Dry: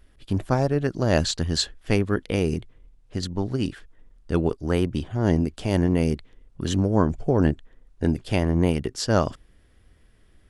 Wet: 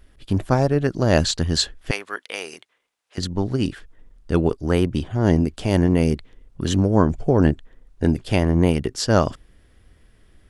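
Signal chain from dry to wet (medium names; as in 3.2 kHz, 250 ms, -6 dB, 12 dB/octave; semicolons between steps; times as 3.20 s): 1.91–3.18 s: high-pass 960 Hz 12 dB/octave; trim +3.5 dB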